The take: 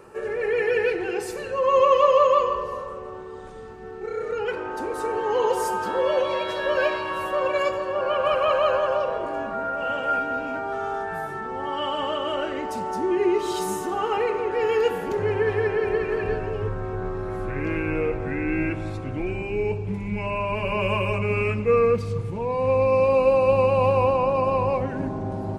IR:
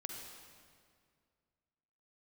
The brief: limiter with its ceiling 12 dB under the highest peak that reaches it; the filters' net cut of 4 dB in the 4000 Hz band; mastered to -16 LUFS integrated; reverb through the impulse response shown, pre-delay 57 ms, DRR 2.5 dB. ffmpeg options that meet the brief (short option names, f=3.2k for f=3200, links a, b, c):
-filter_complex "[0:a]equalizer=f=4k:t=o:g=-6.5,alimiter=limit=-19dB:level=0:latency=1,asplit=2[a][b];[1:a]atrim=start_sample=2205,adelay=57[c];[b][c]afir=irnorm=-1:irlink=0,volume=-1dB[d];[a][d]amix=inputs=2:normalize=0,volume=10dB"